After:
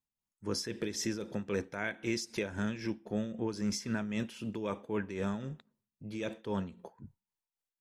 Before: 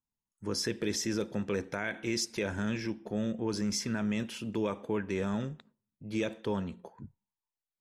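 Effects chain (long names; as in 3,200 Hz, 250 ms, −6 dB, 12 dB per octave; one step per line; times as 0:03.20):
amplitude tremolo 3.8 Hz, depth 62%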